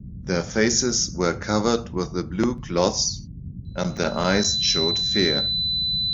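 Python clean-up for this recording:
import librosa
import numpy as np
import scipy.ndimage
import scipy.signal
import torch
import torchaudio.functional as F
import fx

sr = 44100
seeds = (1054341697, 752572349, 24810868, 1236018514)

y = fx.notch(x, sr, hz=4000.0, q=30.0)
y = fx.fix_interpolate(y, sr, at_s=(2.58, 3.97), length_ms=1.6)
y = fx.noise_reduce(y, sr, print_start_s=3.17, print_end_s=3.67, reduce_db=30.0)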